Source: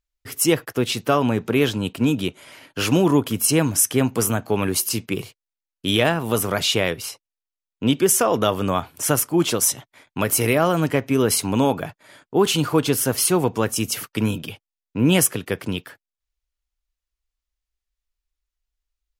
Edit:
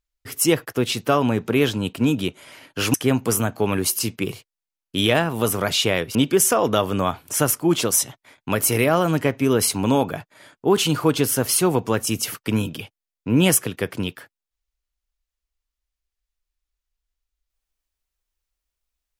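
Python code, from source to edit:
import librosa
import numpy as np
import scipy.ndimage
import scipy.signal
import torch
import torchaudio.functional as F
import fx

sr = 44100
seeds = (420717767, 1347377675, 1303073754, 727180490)

y = fx.edit(x, sr, fx.cut(start_s=2.94, length_s=0.9),
    fx.cut(start_s=7.05, length_s=0.79), tone=tone)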